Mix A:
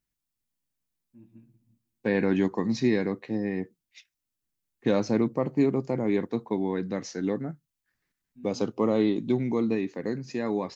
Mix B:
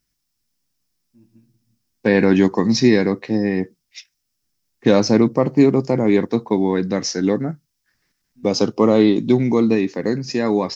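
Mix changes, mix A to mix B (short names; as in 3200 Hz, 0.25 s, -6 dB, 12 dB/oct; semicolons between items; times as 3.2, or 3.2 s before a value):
second voice +10.0 dB; master: add bell 5300 Hz +10 dB 0.39 oct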